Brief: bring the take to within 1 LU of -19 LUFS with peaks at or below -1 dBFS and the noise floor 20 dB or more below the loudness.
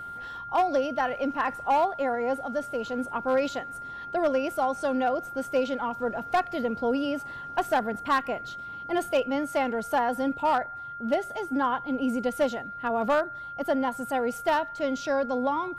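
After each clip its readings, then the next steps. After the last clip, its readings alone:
clipped 0.5%; flat tops at -17.5 dBFS; steady tone 1400 Hz; tone level -36 dBFS; loudness -28.0 LUFS; peak -17.5 dBFS; loudness target -19.0 LUFS
-> clip repair -17.5 dBFS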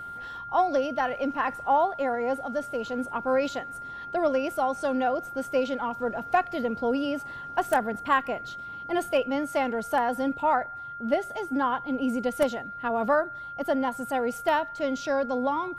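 clipped 0.0%; steady tone 1400 Hz; tone level -36 dBFS
-> notch 1400 Hz, Q 30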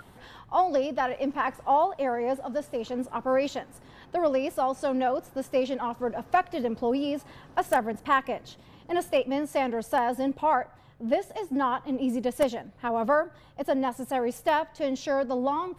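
steady tone none; loudness -28.0 LUFS; peak -9.0 dBFS; loudness target -19.0 LUFS
-> gain +9 dB; limiter -1 dBFS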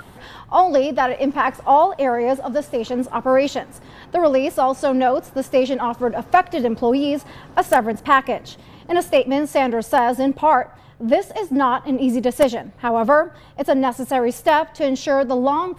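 loudness -19.0 LUFS; peak -1.0 dBFS; noise floor -44 dBFS

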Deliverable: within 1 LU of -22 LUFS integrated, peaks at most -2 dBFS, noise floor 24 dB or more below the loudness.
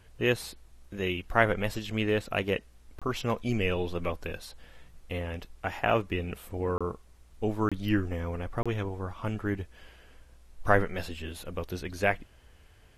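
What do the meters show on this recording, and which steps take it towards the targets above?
dropouts 4; longest dropout 26 ms; loudness -31.0 LUFS; peak -6.0 dBFS; loudness target -22.0 LUFS
-> interpolate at 2.99/6.78/7.69/8.63, 26 ms; gain +9 dB; limiter -2 dBFS

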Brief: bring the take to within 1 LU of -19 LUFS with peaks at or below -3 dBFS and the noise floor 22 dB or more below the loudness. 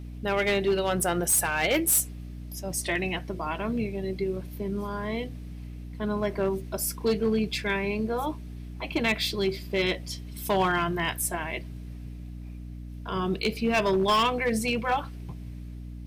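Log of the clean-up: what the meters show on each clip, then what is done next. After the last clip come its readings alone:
clipped 0.7%; flat tops at -18.5 dBFS; hum 60 Hz; harmonics up to 300 Hz; hum level -37 dBFS; loudness -27.0 LUFS; peak -18.5 dBFS; loudness target -19.0 LUFS
-> clip repair -18.5 dBFS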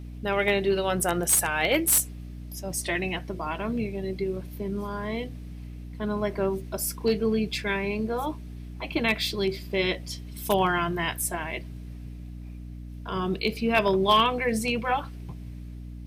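clipped 0.0%; hum 60 Hz; harmonics up to 300 Hz; hum level -37 dBFS
-> de-hum 60 Hz, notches 5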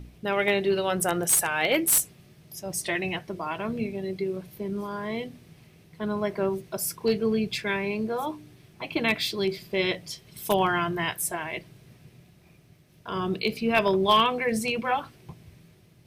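hum none; loudness -26.5 LUFS; peak -9.0 dBFS; loudness target -19.0 LUFS
-> gain +7.5 dB; limiter -3 dBFS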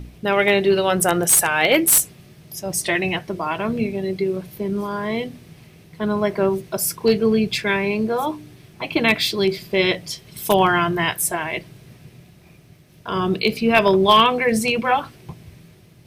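loudness -19.5 LUFS; peak -3.0 dBFS; noise floor -49 dBFS

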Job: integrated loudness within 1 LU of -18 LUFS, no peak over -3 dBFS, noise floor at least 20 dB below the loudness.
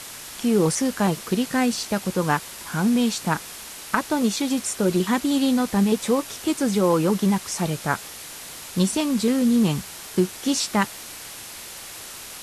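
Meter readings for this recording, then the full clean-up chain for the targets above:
noise floor -39 dBFS; noise floor target -43 dBFS; loudness -23.0 LUFS; peak -5.5 dBFS; loudness target -18.0 LUFS
-> noise print and reduce 6 dB; gain +5 dB; limiter -3 dBFS

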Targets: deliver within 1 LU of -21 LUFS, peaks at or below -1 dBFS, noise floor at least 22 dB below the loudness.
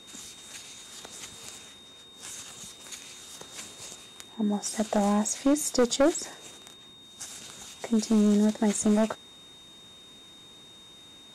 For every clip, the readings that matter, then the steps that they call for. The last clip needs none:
clipped 0.7%; flat tops at -17.0 dBFS; steady tone 3700 Hz; tone level -49 dBFS; loudness -26.5 LUFS; peak -17.0 dBFS; loudness target -21.0 LUFS
-> clip repair -17 dBFS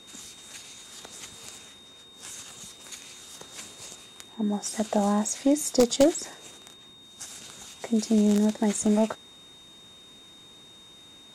clipped 0.0%; steady tone 3700 Hz; tone level -49 dBFS
-> notch 3700 Hz, Q 30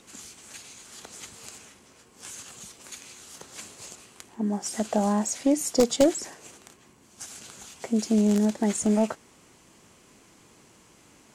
steady tone none; loudness -25.0 LUFS; peak -8.0 dBFS; loudness target -21.0 LUFS
-> gain +4 dB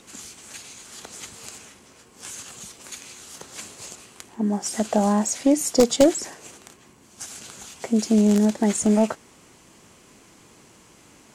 loudness -21.0 LUFS; peak -4.0 dBFS; noise floor -53 dBFS

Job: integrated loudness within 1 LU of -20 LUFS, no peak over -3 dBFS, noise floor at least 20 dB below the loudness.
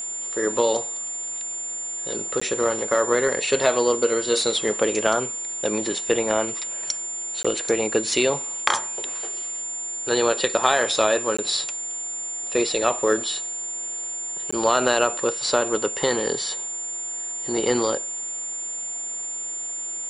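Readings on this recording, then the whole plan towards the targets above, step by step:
dropouts 4; longest dropout 15 ms; steady tone 7200 Hz; tone level -28 dBFS; loudness -23.5 LUFS; peak -2.0 dBFS; loudness target -20.0 LUFS
-> interpolate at 2.4/7.43/11.37/14.51, 15 ms; notch 7200 Hz, Q 30; gain +3.5 dB; limiter -3 dBFS

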